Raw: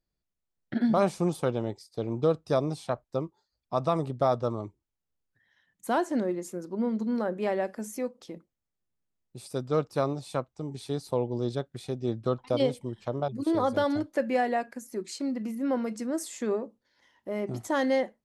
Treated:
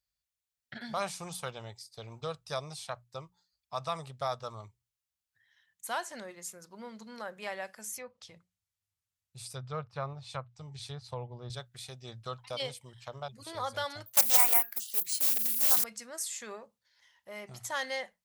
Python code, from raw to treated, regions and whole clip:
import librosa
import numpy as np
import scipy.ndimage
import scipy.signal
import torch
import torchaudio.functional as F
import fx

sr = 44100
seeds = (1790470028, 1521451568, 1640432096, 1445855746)

y = fx.chain(x, sr, fx.env_lowpass_down(base_hz=1800.0, full_db=-26.0),
    fx.peak_eq(hz=98.0, db=14.0, octaves=0.81), at=(7.96, 11.5))
y = fx.chain(y, sr, fx.resample_bad(factor=3, down='none', up='zero_stuff'),
    fx.doppler_dist(depth_ms=0.57), at=(14.06, 15.84))
y = scipy.signal.sosfilt(scipy.signal.butter(2, 59.0, 'highpass', fs=sr, output='sos'), y)
y = fx.tone_stack(y, sr, knobs='10-0-10')
y = fx.hum_notches(y, sr, base_hz=60, count=3)
y = y * librosa.db_to_amplitude(4.0)